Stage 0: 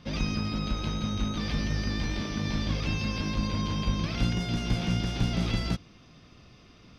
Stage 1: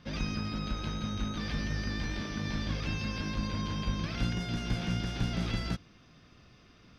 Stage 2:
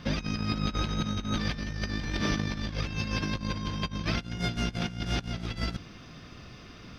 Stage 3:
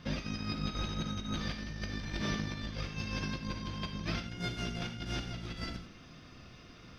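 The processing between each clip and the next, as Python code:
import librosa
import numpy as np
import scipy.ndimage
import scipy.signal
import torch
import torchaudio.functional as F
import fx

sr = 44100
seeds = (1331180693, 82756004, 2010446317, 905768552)

y1 = fx.peak_eq(x, sr, hz=1600.0, db=5.5, octaves=0.47)
y1 = F.gain(torch.from_numpy(y1), -4.5).numpy()
y2 = fx.over_compress(y1, sr, threshold_db=-37.0, ratio=-0.5)
y2 = F.gain(torch.from_numpy(y2), 6.5).numpy()
y3 = fx.rev_gated(y2, sr, seeds[0], gate_ms=120, shape='flat', drr_db=4.5)
y3 = F.gain(torch.from_numpy(y3), -7.0).numpy()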